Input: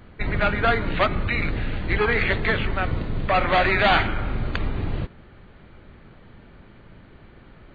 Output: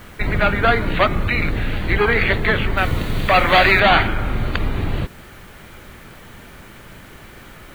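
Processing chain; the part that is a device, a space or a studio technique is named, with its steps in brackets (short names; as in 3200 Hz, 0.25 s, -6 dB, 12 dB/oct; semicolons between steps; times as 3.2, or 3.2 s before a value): noise-reduction cassette on a plain deck (mismatched tape noise reduction encoder only; wow and flutter 28 cents; white noise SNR 33 dB); 2.77–3.8 high shelf 2500 Hz +9 dB; gain +4.5 dB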